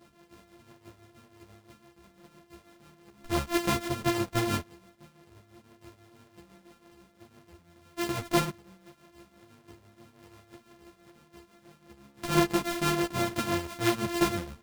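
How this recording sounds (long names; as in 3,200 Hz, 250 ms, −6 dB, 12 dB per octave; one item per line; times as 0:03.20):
a buzz of ramps at a fixed pitch in blocks of 128 samples
tremolo triangle 6 Hz, depth 70%
a shimmering, thickened sound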